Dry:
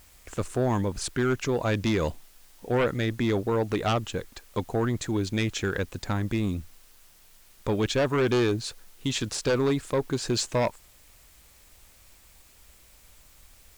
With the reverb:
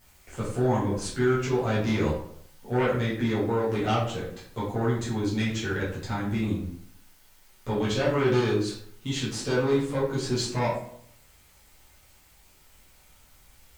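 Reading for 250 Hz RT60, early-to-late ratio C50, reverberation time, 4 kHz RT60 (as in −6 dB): 0.65 s, 4.0 dB, 0.65 s, 0.40 s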